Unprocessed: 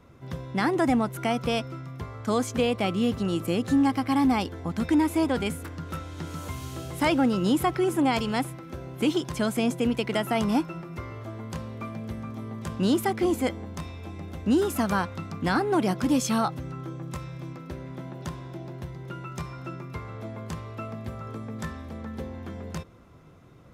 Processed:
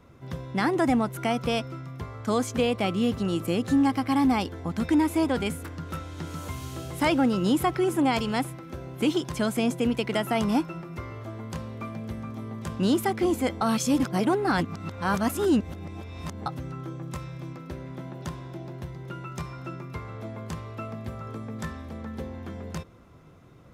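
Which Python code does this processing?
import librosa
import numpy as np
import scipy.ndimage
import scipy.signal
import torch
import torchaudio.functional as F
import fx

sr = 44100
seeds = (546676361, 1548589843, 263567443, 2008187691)

y = fx.edit(x, sr, fx.reverse_span(start_s=13.61, length_s=2.85), tone=tone)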